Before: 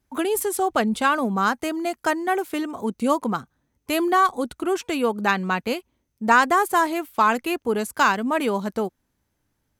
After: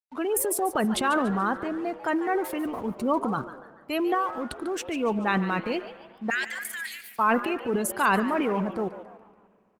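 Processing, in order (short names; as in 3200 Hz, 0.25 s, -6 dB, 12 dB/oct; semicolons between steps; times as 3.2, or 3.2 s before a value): 6.3–7.19 elliptic high-pass 1700 Hz, stop band 60 dB; spectral gate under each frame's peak -25 dB strong; 1.41–1.98 high shelf 2300 Hz -9.5 dB; 4.14–4.83 compressor 12:1, threshold -22 dBFS, peak gain reduction 9 dB; transient shaper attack -3 dB, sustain +9 dB; crossover distortion -49 dBFS; frequency-shifting echo 0.144 s, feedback 42%, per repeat +150 Hz, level -13.5 dB; spring tank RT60 2.3 s, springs 41/58 ms, chirp 45 ms, DRR 17.5 dB; gain -3 dB; Opus 24 kbps 48000 Hz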